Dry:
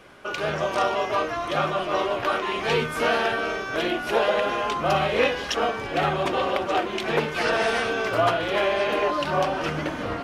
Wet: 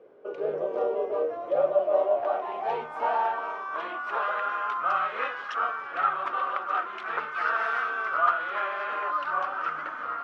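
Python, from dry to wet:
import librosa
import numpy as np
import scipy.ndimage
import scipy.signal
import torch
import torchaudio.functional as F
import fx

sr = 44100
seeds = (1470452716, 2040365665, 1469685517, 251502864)

y = fx.filter_sweep_bandpass(x, sr, from_hz=460.0, to_hz=1300.0, start_s=1.0, end_s=4.4, q=6.4)
y = y * librosa.db_to_amplitude(7.0)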